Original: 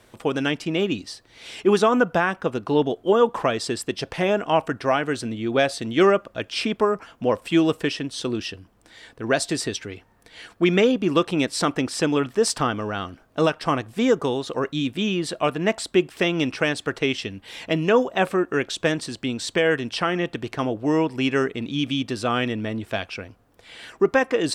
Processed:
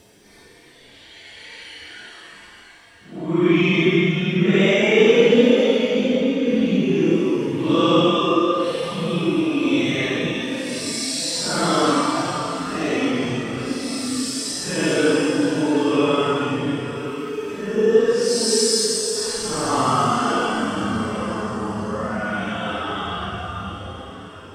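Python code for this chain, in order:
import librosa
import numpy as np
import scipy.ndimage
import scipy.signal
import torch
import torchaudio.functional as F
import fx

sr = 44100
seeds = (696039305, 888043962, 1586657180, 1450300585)

y = fx.rev_double_slope(x, sr, seeds[0], early_s=0.6, late_s=1.8, knee_db=-18, drr_db=-3.0)
y = fx.paulstretch(y, sr, seeds[1], factor=8.2, window_s=0.05, from_s=10.22)
y = y * librosa.db_to_amplitude(-2.5)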